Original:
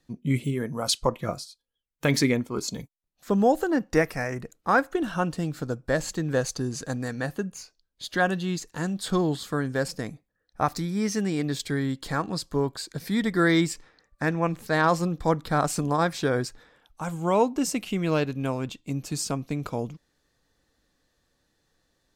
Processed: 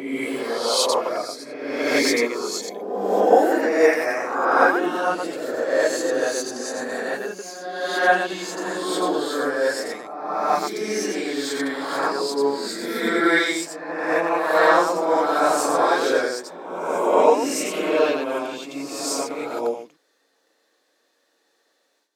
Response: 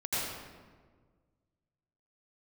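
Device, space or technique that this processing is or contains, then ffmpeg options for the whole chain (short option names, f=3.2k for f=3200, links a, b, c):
ghost voice: -filter_complex "[0:a]areverse[a];[1:a]atrim=start_sample=2205[b];[a][b]afir=irnorm=-1:irlink=0,areverse,highpass=f=340:w=0.5412,highpass=f=340:w=1.3066"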